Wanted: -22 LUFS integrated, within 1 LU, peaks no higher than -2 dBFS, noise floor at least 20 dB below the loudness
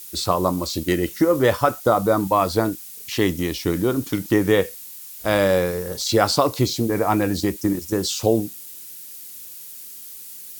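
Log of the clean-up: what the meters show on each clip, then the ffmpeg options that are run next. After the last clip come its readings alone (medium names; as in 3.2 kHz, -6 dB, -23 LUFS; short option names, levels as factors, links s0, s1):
noise floor -39 dBFS; noise floor target -41 dBFS; loudness -21.0 LUFS; peak level -2.5 dBFS; loudness target -22.0 LUFS
-> -af "afftdn=nr=6:nf=-39"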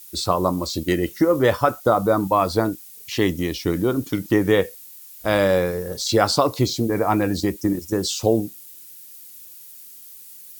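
noise floor -43 dBFS; loudness -21.0 LUFS; peak level -2.5 dBFS; loudness target -22.0 LUFS
-> -af "volume=0.891"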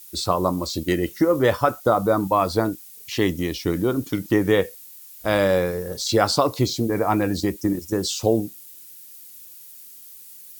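loudness -22.0 LUFS; peak level -3.5 dBFS; noise floor -44 dBFS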